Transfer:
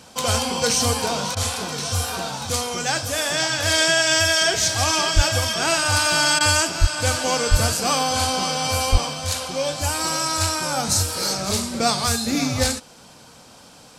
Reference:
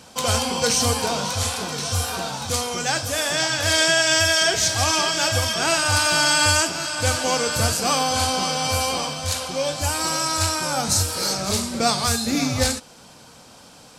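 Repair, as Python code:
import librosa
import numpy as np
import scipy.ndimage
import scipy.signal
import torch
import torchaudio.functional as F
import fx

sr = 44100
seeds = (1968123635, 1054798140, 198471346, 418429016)

y = fx.fix_deplosive(x, sr, at_s=(5.15, 6.8, 7.5, 8.91))
y = fx.fix_interpolate(y, sr, at_s=(1.35, 6.39), length_ms=15.0)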